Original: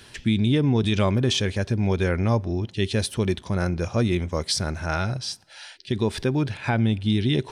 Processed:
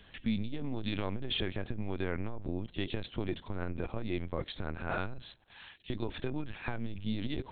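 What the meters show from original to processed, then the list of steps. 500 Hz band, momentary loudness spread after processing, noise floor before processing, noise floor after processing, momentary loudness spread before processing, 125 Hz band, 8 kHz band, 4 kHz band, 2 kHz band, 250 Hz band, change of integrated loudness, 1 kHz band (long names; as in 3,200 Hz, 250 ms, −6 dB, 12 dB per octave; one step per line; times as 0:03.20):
−13.0 dB, 6 LU, −49 dBFS, −58 dBFS, 7 LU, −16.0 dB, below −40 dB, −12.0 dB, −11.0 dB, −13.0 dB, −13.5 dB, −11.5 dB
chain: linear-prediction vocoder at 8 kHz pitch kept
saturating transformer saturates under 100 Hz
level −8 dB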